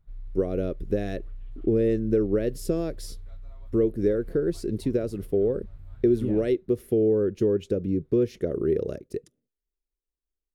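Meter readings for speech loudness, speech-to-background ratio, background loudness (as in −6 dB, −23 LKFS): −26.0 LKFS, 20.0 dB, −46.0 LKFS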